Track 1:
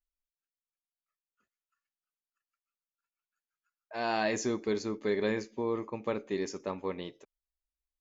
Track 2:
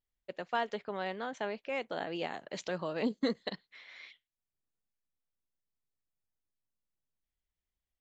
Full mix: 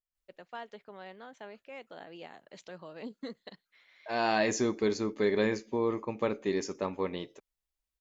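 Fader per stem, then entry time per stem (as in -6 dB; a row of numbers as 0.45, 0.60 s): +2.5, -10.0 dB; 0.15, 0.00 s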